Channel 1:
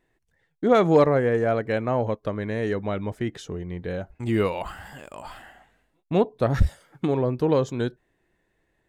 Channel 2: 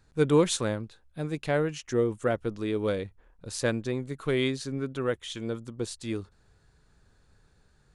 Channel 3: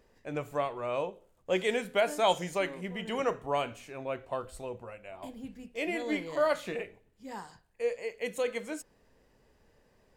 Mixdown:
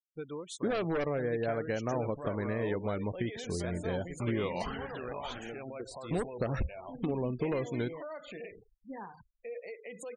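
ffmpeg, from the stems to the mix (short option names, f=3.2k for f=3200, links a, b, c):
-filter_complex "[0:a]aeval=exprs='0.211*(abs(mod(val(0)/0.211+3,4)-2)-1)':c=same,acompressor=threshold=-26dB:ratio=8,volume=-3dB[a];[1:a]lowshelf=f=240:g=-9.5,acompressor=threshold=-33dB:ratio=5,volume=-6dB[b];[2:a]acompressor=threshold=-32dB:ratio=6,alimiter=level_in=13dB:limit=-24dB:level=0:latency=1:release=107,volume=-13dB,adelay=1650,volume=2.5dB[c];[a][b][c]amix=inputs=3:normalize=0,afftfilt=real='re*gte(hypot(re,im),0.00631)':imag='im*gte(hypot(re,im),0.00631)':win_size=1024:overlap=0.75"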